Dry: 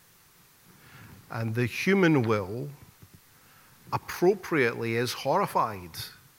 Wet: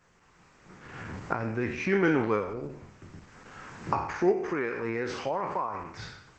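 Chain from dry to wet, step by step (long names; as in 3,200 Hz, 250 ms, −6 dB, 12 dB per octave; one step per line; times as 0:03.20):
peak hold with a decay on every bin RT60 0.62 s
camcorder AGC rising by 12 dB per second
octave-band graphic EQ 125/4,000/8,000 Hz −7/−12/−8 dB
0:04.31–0:05.75: downward compressor 12 to 1, threshold −24 dBFS, peak gain reduction 7 dB
level −1.5 dB
Opus 12 kbit/s 48,000 Hz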